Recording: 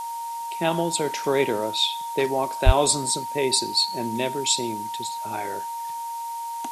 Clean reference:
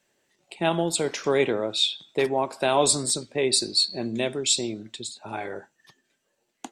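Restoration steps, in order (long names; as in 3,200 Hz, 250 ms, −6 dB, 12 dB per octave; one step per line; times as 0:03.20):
click removal
notch filter 930 Hz, Q 30
high-pass at the plosives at 0:02.65
noise reduction from a noise print 30 dB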